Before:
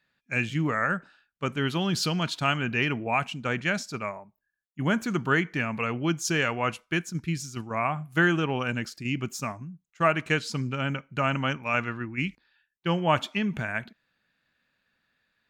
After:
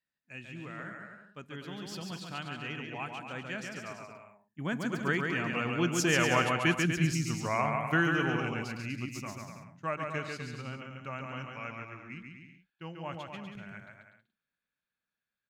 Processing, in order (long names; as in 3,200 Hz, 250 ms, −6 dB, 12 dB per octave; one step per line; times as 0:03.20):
source passing by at 0:06.71, 15 m/s, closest 12 metres
bouncing-ball delay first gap 140 ms, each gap 0.75×, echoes 5